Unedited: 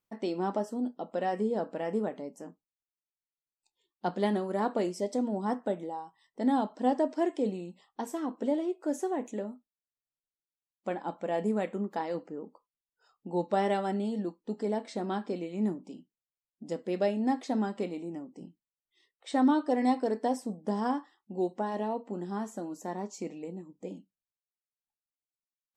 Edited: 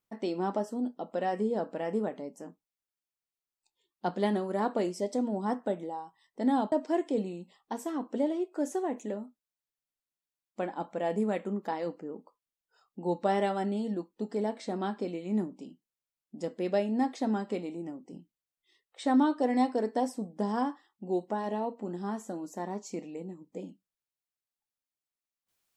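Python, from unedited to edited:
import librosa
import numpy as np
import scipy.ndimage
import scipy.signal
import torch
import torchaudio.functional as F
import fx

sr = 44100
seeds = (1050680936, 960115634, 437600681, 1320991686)

y = fx.edit(x, sr, fx.cut(start_s=6.72, length_s=0.28), tone=tone)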